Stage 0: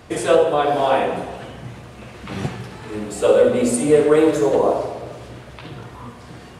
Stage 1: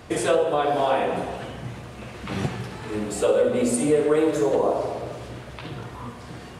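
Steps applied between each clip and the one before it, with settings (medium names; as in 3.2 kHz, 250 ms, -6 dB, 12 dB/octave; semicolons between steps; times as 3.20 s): compression 2:1, threshold -21 dBFS, peak gain reduction 7 dB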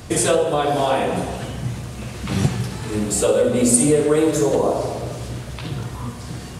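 tone controls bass +8 dB, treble +11 dB; trim +2 dB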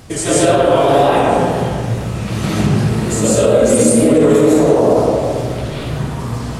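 wow and flutter 130 cents; algorithmic reverb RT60 2.1 s, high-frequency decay 0.35×, pre-delay 105 ms, DRR -9 dB; loudness maximiser -1 dB; trim -1 dB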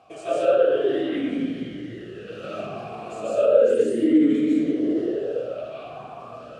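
talking filter a-i 0.33 Hz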